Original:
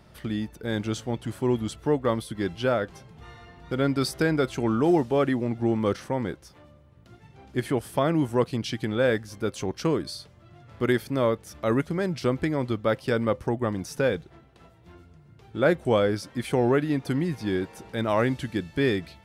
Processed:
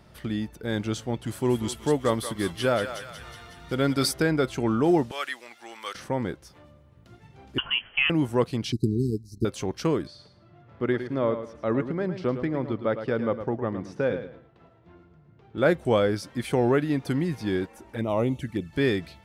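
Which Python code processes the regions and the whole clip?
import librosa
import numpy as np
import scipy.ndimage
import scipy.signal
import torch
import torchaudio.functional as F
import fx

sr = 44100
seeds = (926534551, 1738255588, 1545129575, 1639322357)

y = fx.chain(x, sr, fx.high_shelf(hz=3700.0, db=7.5),
    fx.echo_thinned(ms=184, feedback_pct=67, hz=1100.0, wet_db=-6.5), at=(1.26, 4.13))
y = fx.chain(y, sr, fx.highpass(hz=1300.0, slope=12),
    fx.high_shelf(hz=2400.0, db=8.5), at=(5.11, 5.95))
y = fx.chain(y, sr, fx.highpass(hz=220.0, slope=6),
    fx.freq_invert(carrier_hz=3200),
    fx.doubler(ms=21.0, db=-13), at=(7.58, 8.1))
y = fx.chain(y, sr, fx.low_shelf(hz=120.0, db=10.5),
    fx.transient(attack_db=5, sustain_db=-10),
    fx.brickwall_bandstop(low_hz=440.0, high_hz=3800.0), at=(8.72, 9.45))
y = fx.chain(y, sr, fx.highpass(hz=130.0, slope=6),
    fx.spacing_loss(db_at_10k=25),
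    fx.echo_feedback(ms=109, feedback_pct=27, wet_db=-10), at=(10.07, 15.58))
y = fx.chain(y, sr, fx.peak_eq(hz=4200.0, db=-7.0, octaves=1.1),
    fx.env_flanger(rest_ms=4.5, full_db=-23.0), at=(17.66, 18.73))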